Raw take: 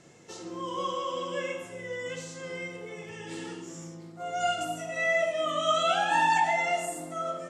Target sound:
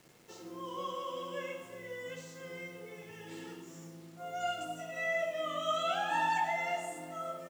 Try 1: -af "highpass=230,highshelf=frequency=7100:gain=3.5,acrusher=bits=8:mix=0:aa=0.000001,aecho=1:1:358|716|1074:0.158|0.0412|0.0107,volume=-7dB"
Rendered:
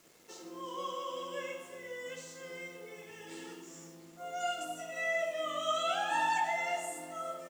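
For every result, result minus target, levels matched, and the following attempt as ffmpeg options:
125 Hz band −7.0 dB; 8,000 Hz band +4.5 dB
-af "highpass=72,highshelf=frequency=7100:gain=3.5,acrusher=bits=8:mix=0:aa=0.000001,aecho=1:1:358|716|1074:0.158|0.0412|0.0107,volume=-7dB"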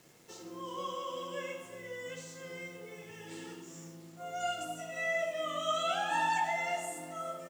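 8,000 Hz band +4.5 dB
-af "highpass=72,highshelf=frequency=7100:gain=-6.5,acrusher=bits=8:mix=0:aa=0.000001,aecho=1:1:358|716|1074:0.158|0.0412|0.0107,volume=-7dB"

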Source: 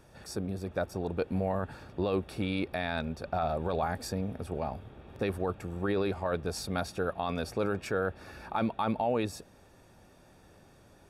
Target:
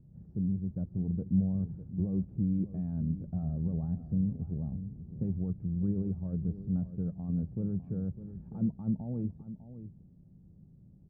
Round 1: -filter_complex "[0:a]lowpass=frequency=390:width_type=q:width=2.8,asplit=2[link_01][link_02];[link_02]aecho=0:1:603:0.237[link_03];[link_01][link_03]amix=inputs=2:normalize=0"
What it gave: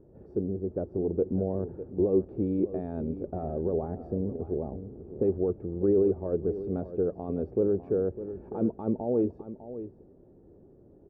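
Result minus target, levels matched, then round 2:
500 Hz band +17.0 dB
-filter_complex "[0:a]lowpass=frequency=170:width_type=q:width=2.8,asplit=2[link_01][link_02];[link_02]aecho=0:1:603:0.237[link_03];[link_01][link_03]amix=inputs=2:normalize=0"

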